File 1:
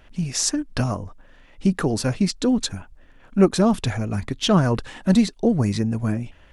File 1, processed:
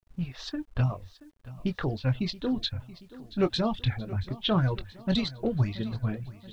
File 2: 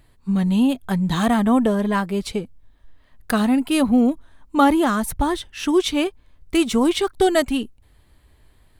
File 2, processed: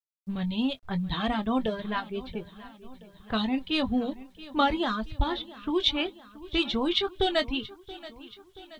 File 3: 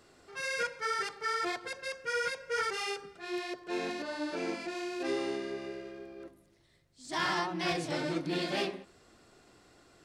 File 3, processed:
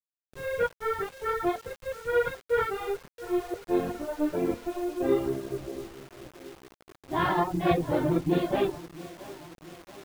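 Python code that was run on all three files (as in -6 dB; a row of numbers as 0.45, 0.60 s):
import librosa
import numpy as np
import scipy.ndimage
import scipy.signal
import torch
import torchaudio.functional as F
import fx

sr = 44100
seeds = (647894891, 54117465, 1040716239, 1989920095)

y = np.sign(x) * np.maximum(np.abs(x) - 10.0 ** (-46.0 / 20.0), 0.0)
y = fx.doubler(y, sr, ms=23.0, db=-9)
y = fx.dereverb_blind(y, sr, rt60_s=0.86)
y = fx.env_lowpass(y, sr, base_hz=520.0, full_db=-14.0)
y = fx.lowpass_res(y, sr, hz=3700.0, q=3.9)
y = fx.low_shelf_res(y, sr, hz=150.0, db=6.5, q=1.5)
y = fx.echo_feedback(y, sr, ms=678, feedback_pct=57, wet_db=-18.0)
y = fx.quant_dither(y, sr, seeds[0], bits=10, dither='none')
y = y * 10.0 ** (-30 / 20.0) / np.sqrt(np.mean(np.square(y)))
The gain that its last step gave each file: -8.0, -8.5, +12.0 dB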